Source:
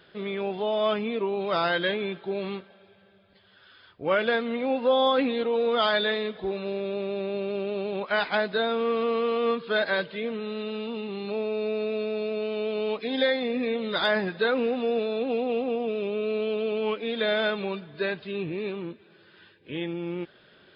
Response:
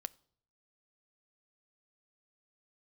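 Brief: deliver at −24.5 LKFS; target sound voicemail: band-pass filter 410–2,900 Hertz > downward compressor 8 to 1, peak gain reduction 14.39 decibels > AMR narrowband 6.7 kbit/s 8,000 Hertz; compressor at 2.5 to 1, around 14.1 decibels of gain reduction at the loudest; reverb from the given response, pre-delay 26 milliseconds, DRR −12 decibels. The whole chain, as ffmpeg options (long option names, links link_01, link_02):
-filter_complex "[0:a]acompressor=threshold=-41dB:ratio=2.5,asplit=2[link_01][link_02];[1:a]atrim=start_sample=2205,adelay=26[link_03];[link_02][link_03]afir=irnorm=-1:irlink=0,volume=15dB[link_04];[link_01][link_04]amix=inputs=2:normalize=0,highpass=410,lowpass=2900,acompressor=threshold=-35dB:ratio=8,volume=15dB" -ar 8000 -c:a libopencore_amrnb -b:a 6700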